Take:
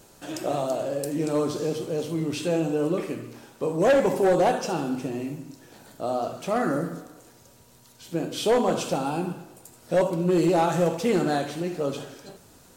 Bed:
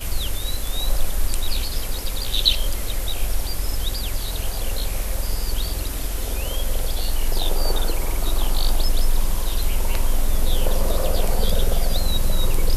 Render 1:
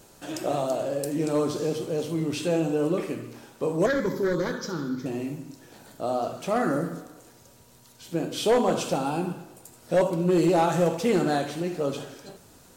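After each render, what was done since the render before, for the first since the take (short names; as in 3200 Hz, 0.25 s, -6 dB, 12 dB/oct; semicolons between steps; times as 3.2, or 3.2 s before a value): 3.86–5.06 fixed phaser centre 2700 Hz, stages 6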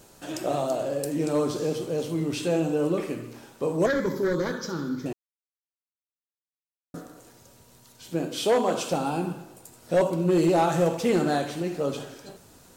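5.13–6.94 mute; 8.26–8.9 HPF 130 Hz -> 360 Hz 6 dB/oct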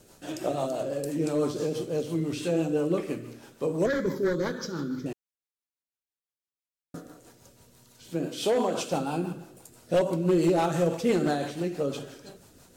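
rotary speaker horn 6 Hz; wavefolder -16 dBFS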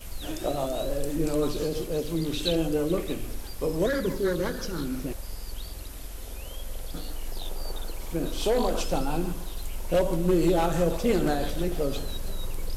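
add bed -13 dB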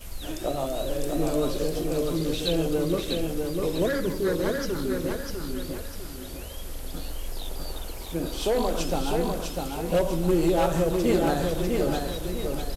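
feedback echo 0.649 s, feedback 38%, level -4 dB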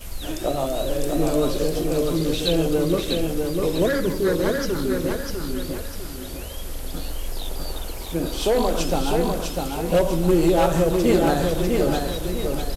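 gain +4.5 dB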